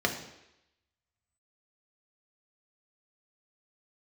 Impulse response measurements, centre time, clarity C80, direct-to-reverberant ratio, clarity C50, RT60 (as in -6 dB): 19 ms, 11.0 dB, 2.0 dB, 8.5 dB, 0.85 s